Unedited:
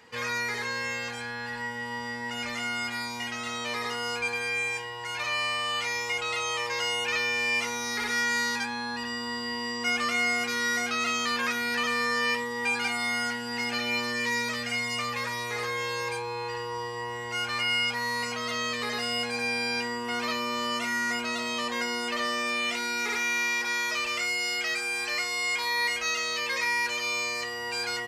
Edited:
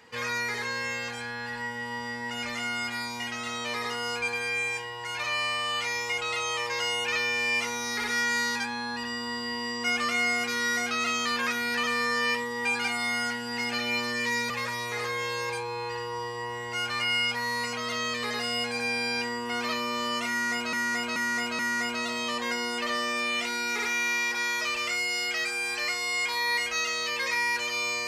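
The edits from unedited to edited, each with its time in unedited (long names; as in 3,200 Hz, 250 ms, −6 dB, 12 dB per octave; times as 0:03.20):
0:14.50–0:15.09: remove
0:20.89–0:21.32: repeat, 4 plays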